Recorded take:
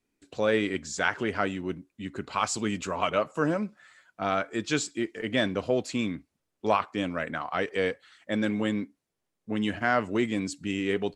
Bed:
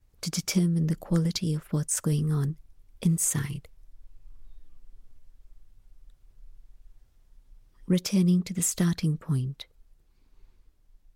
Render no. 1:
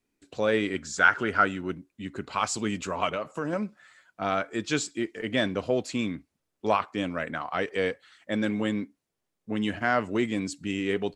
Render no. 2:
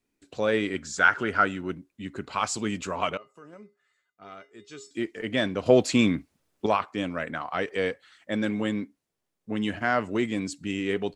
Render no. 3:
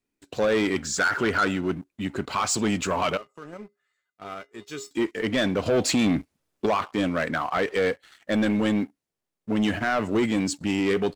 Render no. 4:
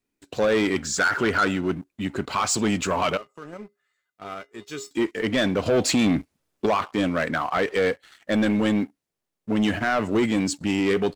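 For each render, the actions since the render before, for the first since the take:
0.77–1.71 s: peaking EQ 1.4 kHz +13 dB 0.26 oct; 3.12–3.53 s: compression 5:1, threshold -26 dBFS
3.17–4.91 s: feedback comb 410 Hz, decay 0.26 s, harmonics odd, mix 90%; 5.66–6.66 s: gain +8 dB
peak limiter -15.5 dBFS, peak gain reduction 9.5 dB; waveshaping leveller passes 2
trim +1.5 dB

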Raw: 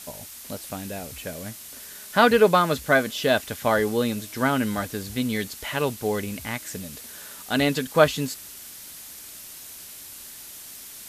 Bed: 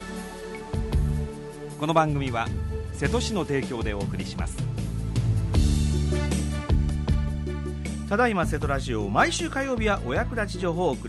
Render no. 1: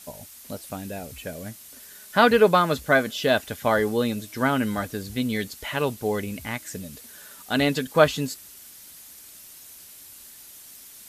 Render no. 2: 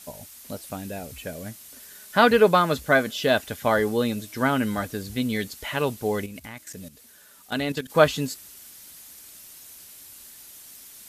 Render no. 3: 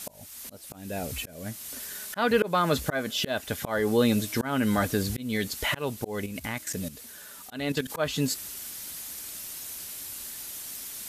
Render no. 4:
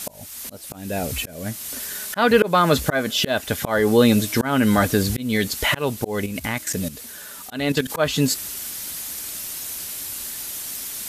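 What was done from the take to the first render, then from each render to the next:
noise reduction 6 dB, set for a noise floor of -42 dBFS
6.26–7.90 s: level held to a coarse grid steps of 13 dB
slow attack 448 ms; in parallel at +1.5 dB: peak limiter -24.5 dBFS, peak gain reduction 11.5 dB
trim +7.5 dB

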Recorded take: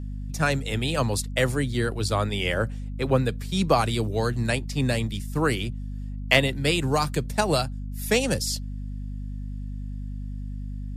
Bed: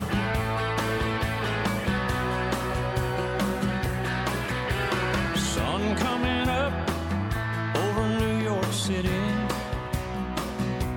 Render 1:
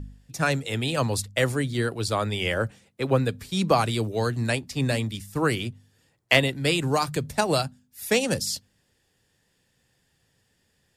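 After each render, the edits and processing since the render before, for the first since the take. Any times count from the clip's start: de-hum 50 Hz, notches 5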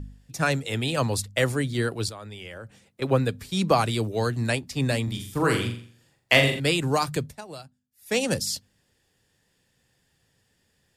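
2.09–3.02 s: compression 3:1, threshold -41 dBFS; 5.03–6.60 s: flutter echo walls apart 7.3 m, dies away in 0.5 s; 7.21–8.20 s: dip -17 dB, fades 0.15 s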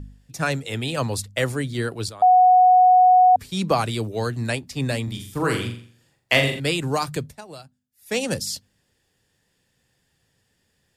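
2.22–3.36 s: bleep 735 Hz -10 dBFS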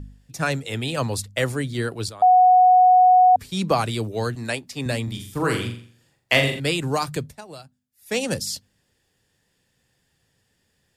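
4.35–4.86 s: high-pass 250 Hz 6 dB/octave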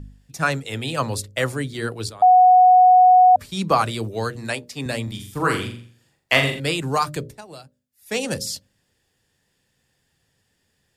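hum notches 60/120/180/240/300/360/420/480/540/600 Hz; dynamic bell 1.2 kHz, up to +7 dB, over -33 dBFS, Q 1.7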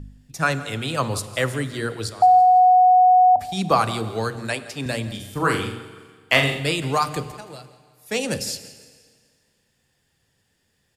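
feedback delay 168 ms, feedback 39%, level -17.5 dB; Schroeder reverb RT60 1.9 s, combs from 32 ms, DRR 14.5 dB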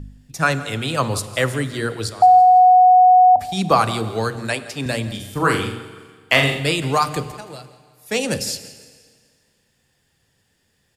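trim +3 dB; peak limiter -1 dBFS, peak gain reduction 1.5 dB

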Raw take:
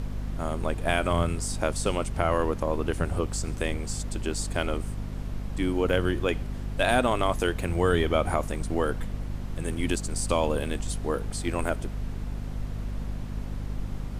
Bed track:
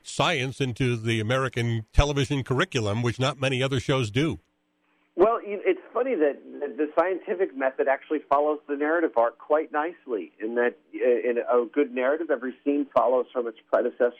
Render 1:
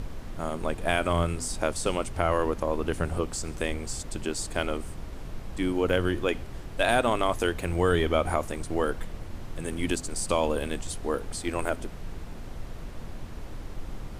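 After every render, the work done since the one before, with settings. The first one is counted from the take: hum notches 50/100/150/200/250 Hz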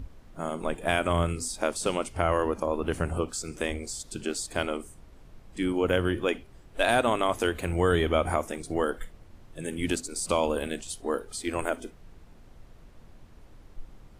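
noise print and reduce 13 dB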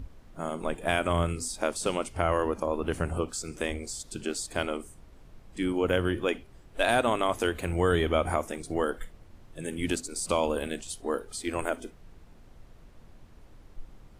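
trim -1 dB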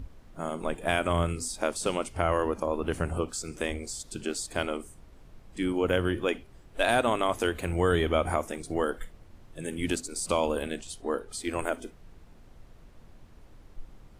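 10.62–11.30 s: low-pass 8.4 kHz -> 5.1 kHz 6 dB/octave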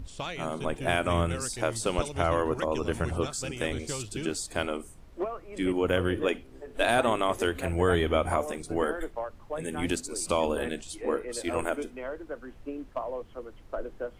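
add bed track -13 dB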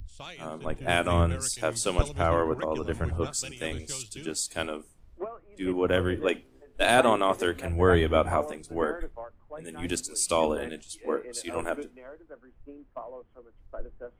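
upward compressor, threshold -35 dBFS; three bands expanded up and down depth 100%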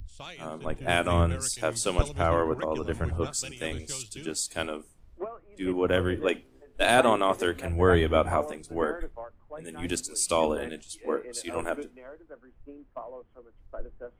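no audible change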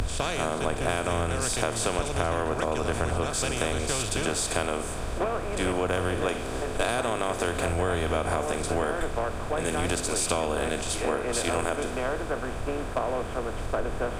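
spectral levelling over time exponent 0.4; compression, threshold -23 dBFS, peak gain reduction 11.5 dB

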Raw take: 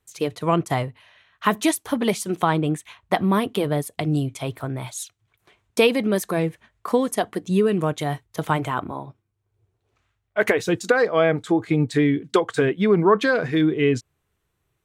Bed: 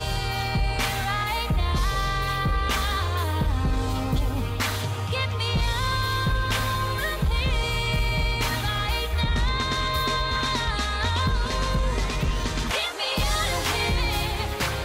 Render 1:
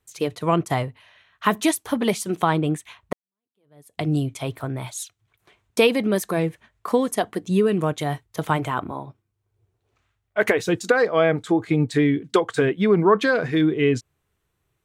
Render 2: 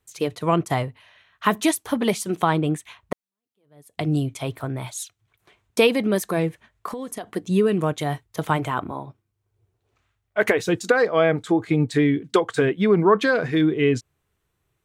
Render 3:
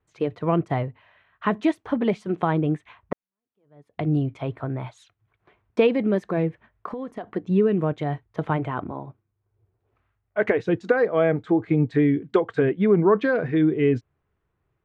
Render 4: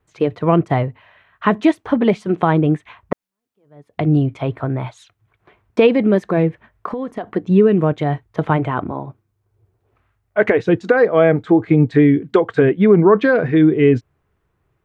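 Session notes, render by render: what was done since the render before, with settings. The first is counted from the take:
3.13–4.01 s: fade in exponential
6.88–7.29 s: compression 8:1, threshold -28 dBFS
low-pass 1.8 kHz 12 dB/octave; dynamic bell 1.1 kHz, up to -5 dB, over -35 dBFS, Q 1.2
trim +7.5 dB; peak limiter -2 dBFS, peak gain reduction 3 dB

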